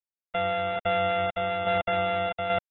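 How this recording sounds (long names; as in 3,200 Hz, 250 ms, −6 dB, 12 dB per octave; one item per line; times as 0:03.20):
a buzz of ramps at a fixed pitch in blocks of 64 samples
tremolo saw down 1.2 Hz, depth 50%
a quantiser's noise floor 10 bits, dither none
AAC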